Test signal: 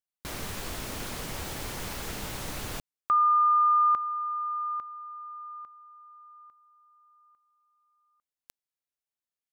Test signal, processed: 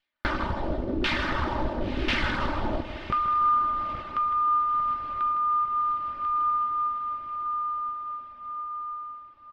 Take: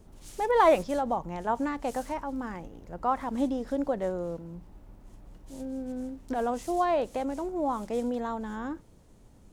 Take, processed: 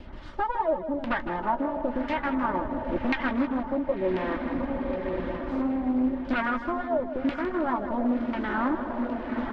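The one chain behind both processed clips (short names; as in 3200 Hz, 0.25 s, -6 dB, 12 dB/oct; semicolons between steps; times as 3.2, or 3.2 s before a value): minimum comb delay 3.3 ms; compressor 2.5:1, threshold -34 dBFS; notch 460 Hz, Q 12; LFO low-pass saw down 0.96 Hz 360–2500 Hz; on a send: diffused feedback echo 1.04 s, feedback 49%, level -8 dB; on the sum: vocal rider within 5 dB 0.5 s; dynamic EQ 690 Hz, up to -5 dB, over -43 dBFS, Q 1.2; reverb removal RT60 0.57 s; band shelf 4000 Hz +8 dB 1 oct; doubler 16 ms -12 dB; feedback echo 0.158 s, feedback 47%, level -11 dB; Doppler distortion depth 0.26 ms; gain +8.5 dB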